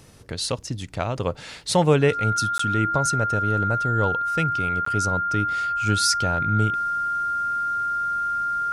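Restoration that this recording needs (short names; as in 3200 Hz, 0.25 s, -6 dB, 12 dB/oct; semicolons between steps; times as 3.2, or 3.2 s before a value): de-click; notch 1400 Hz, Q 30; interpolate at 2.58/4.85, 14 ms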